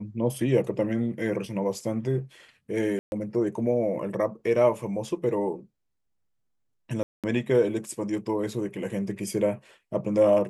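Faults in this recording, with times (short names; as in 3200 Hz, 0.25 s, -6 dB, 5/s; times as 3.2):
2.99–3.12 gap 0.131 s
7.03–7.24 gap 0.207 s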